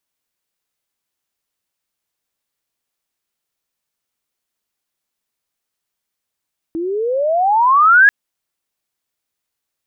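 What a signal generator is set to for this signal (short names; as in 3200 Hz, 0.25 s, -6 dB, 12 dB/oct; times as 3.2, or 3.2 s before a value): chirp logarithmic 320 Hz -> 1700 Hz -19 dBFS -> -4.5 dBFS 1.34 s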